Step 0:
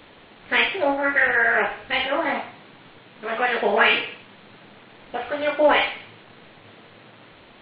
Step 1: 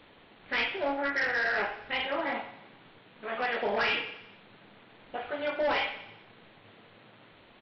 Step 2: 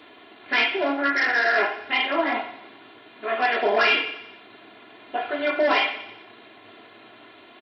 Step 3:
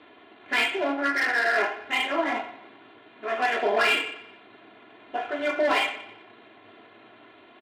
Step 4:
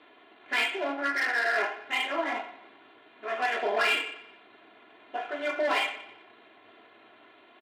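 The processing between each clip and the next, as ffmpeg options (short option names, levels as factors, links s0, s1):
-af "aresample=11025,asoftclip=type=hard:threshold=0.15,aresample=44100,aecho=1:1:89|178|267|356|445:0.15|0.0868|0.0503|0.0292|0.0169,volume=0.398"
-af "highpass=180,aecho=1:1:2.9:0.78,volume=2.11"
-af "adynamicsmooth=sensitivity=3.5:basefreq=3700,volume=0.75"
-af "lowshelf=f=210:g=-11,volume=0.708"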